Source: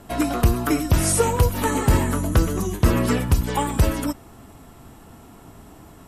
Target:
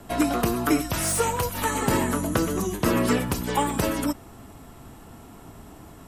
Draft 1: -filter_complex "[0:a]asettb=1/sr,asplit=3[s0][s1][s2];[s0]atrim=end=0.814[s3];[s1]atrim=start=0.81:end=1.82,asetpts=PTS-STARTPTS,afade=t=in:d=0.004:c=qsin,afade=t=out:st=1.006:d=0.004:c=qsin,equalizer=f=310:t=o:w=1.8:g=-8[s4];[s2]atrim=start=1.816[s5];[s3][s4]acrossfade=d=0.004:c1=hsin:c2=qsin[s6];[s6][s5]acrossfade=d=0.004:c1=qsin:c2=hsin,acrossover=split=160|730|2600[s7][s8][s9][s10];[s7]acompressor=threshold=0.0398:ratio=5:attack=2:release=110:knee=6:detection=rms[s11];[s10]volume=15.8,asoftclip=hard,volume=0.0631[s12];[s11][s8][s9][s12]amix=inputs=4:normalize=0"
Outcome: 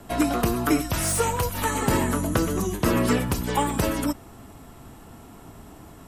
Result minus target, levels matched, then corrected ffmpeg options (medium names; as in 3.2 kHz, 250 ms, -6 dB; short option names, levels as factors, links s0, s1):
compression: peak gain reduction -5 dB
-filter_complex "[0:a]asettb=1/sr,asplit=3[s0][s1][s2];[s0]atrim=end=0.814[s3];[s1]atrim=start=0.81:end=1.82,asetpts=PTS-STARTPTS,afade=t=in:d=0.004:c=qsin,afade=t=out:st=1.006:d=0.004:c=qsin,equalizer=f=310:t=o:w=1.8:g=-8[s4];[s2]atrim=start=1.816[s5];[s3][s4]acrossfade=d=0.004:c1=hsin:c2=qsin[s6];[s6][s5]acrossfade=d=0.004:c1=qsin:c2=hsin,acrossover=split=160|730|2600[s7][s8][s9][s10];[s7]acompressor=threshold=0.02:ratio=5:attack=2:release=110:knee=6:detection=rms[s11];[s10]volume=15.8,asoftclip=hard,volume=0.0631[s12];[s11][s8][s9][s12]amix=inputs=4:normalize=0"